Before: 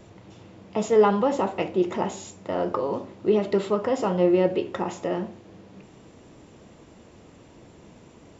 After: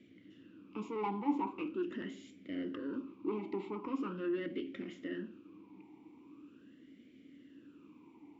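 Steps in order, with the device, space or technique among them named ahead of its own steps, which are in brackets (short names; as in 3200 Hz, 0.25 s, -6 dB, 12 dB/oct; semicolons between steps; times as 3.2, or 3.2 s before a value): talk box (tube stage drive 20 dB, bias 0.35; vowel sweep i-u 0.42 Hz); gain +3 dB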